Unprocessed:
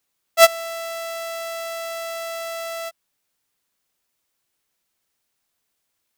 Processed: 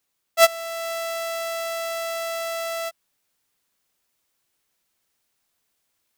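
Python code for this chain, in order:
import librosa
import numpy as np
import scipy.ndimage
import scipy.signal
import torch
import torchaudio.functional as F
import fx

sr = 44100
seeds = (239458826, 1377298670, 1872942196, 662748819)

y = fx.rider(x, sr, range_db=3, speed_s=0.5)
y = F.gain(torch.from_numpy(y), -1.5).numpy()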